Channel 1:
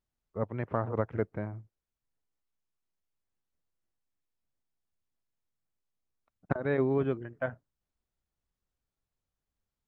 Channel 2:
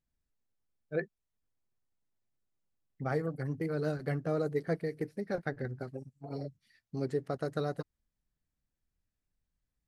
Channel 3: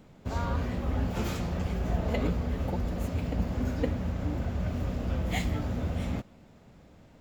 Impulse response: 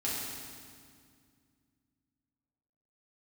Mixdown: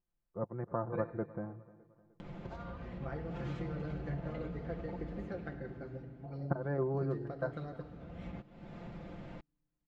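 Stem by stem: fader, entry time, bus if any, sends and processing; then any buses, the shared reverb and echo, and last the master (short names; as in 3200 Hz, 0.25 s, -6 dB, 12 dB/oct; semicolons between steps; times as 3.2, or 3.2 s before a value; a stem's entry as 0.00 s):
-5.5 dB, 0.00 s, no send, echo send -20.5 dB, LPF 1400 Hz 24 dB/oct
-8.5 dB, 0.00 s, send -9 dB, no echo send, compressor 4:1, threshold -34 dBFS, peak gain reduction 7.5 dB
-3.5 dB, 2.20 s, no send, no echo send, upward compressor, threshold -32 dBFS; limiter -23 dBFS, peak gain reduction 9 dB; compressor 5:1, threshold -38 dBFS, peak gain reduction 10.5 dB; auto duck -18 dB, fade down 1.35 s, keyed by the first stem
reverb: on, RT60 2.1 s, pre-delay 4 ms
echo: feedback echo 0.304 s, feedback 45%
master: LPF 3100 Hz 12 dB/oct; comb 5.8 ms, depth 59%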